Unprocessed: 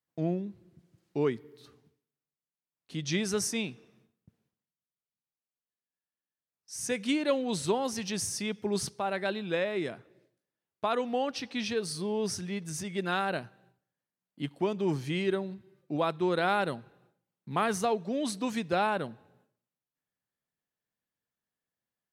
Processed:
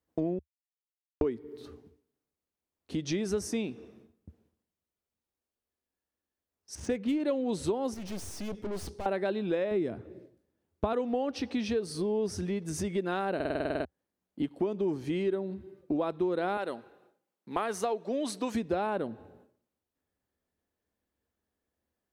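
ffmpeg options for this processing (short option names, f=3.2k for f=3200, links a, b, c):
-filter_complex "[0:a]asettb=1/sr,asplit=3[a][b][c];[a]atrim=end=6.754[d];[b]atrim=start=6.75:end=7.2,asetpts=PTS-STARTPTS,afade=t=in:d=0.004:c=qsin,afade=t=out:st=0.446:d=0.004:c=qsin,adynamicsmooth=sensitivity=6.5:basefreq=2.2k[e];[c]atrim=start=7.196[f];[d][e]acrossfade=d=0.004:c1=hsin:c2=qsin[g];[g][f]acrossfade=d=0.004:c1=qsin:c2=hsin,asettb=1/sr,asplit=3[h][i][j];[h]atrim=end=7.944[k];[i]atrim=start=7.94:end=9.06,asetpts=PTS-STARTPTS,afade=t=in:d=0.004:c=qsin,afade=t=out:st=1.116:d=0.004:c=qsin,aeval=exprs='(tanh(158*val(0)+0.4)-tanh(0.4))/158':c=same[l];[j]atrim=start=9.056[m];[k][l]acrossfade=d=0.004:c1=hsin:c2=qsin[n];[n][m]acrossfade=d=0.004:c1=qsin:c2=hsin,asettb=1/sr,asplit=3[o][p][q];[o]atrim=end=9.714[r];[p]atrim=start=9.71:end=10.93,asetpts=PTS-STARTPTS,afade=t=in:d=0.004:c=qsin,afade=t=out:st=1.216:d=0.004:c=qsin,equalizer=f=110:t=o:w=2.7:g=10[s];[q]atrim=start=10.926[t];[r][s]acrossfade=d=0.004:c1=hsin:c2=qsin[u];[u][t]acrossfade=d=0.004:c1=qsin:c2=hsin,asettb=1/sr,asplit=3[v][w][x];[v]atrim=end=16.574[y];[w]atrim=start=16.57:end=18.55,asetpts=PTS-STARTPTS,afade=t=in:d=0.004:c=qsin,afade=t=out:st=1.976:d=0.004:c=qsin,highpass=f=790:p=1[z];[x]atrim=start=18.546[aa];[y][z]acrossfade=d=0.004:c1=hsin:c2=qsin[ab];[ab][aa]acrossfade=d=0.004:c1=qsin:c2=hsin,asplit=13[ac][ad][ae][af][ag][ah][ai][aj][ak][al][am][an][ao];[ac]atrim=end=0.39,asetpts=PTS-STARTPTS,afade=t=out:st=0.386:d=0.004:c=hsin[ap];[ad]atrim=start=0.39:end=1.21,asetpts=PTS-STARTPTS,volume=0[aq];[ae]atrim=start=1.21:end=13.402,asetpts=PTS-STARTPTS,afade=t=in:d=0.004:c=hsin[ar];[af]atrim=start=13.348:end=13.402[as];[ag]atrim=start=13.348:end=13.402[at];[ah]atrim=start=13.348:end=13.402[au];[ai]atrim=start=13.348:end=13.402[av];[aj]atrim=start=13.348:end=13.402[aw];[ak]atrim=start=13.348:end=13.402[ax];[al]atrim=start=13.348:end=13.402[ay];[am]atrim=start=13.348:end=13.402[az];[an]atrim=start=13.348:end=13.402[ba];[ao]atrim=start=13.848[bb];[ap][aq][ar]concat=n=3:v=0:a=1[bc];[bc][as]acrossfade=d=0.004:c1=hsin:c2=hsin[bd];[bd][at]acrossfade=d=0.004:c1=hsin:c2=hsin[be];[be][au]acrossfade=d=0.004:c1=hsin:c2=hsin[bf];[bf][av]acrossfade=d=0.004:c1=hsin:c2=hsin[bg];[bg][aw]acrossfade=d=0.004:c1=hsin:c2=hsin[bh];[bh][ax]acrossfade=d=0.004:c1=hsin:c2=hsin[bi];[bi][ay]acrossfade=d=0.004:c1=hsin:c2=hsin[bj];[bj][az]acrossfade=d=0.004:c1=hsin:c2=hsin[bk];[bk][ba]acrossfade=d=0.004:c1=hsin:c2=hsin[bl];[bl][bb]acrossfade=d=0.004:c1=hsin:c2=hsin,equalizer=f=310:t=o:w=2.9:g=13.5,acompressor=threshold=-27dB:ratio=5,lowshelf=f=100:t=q:w=3:g=10"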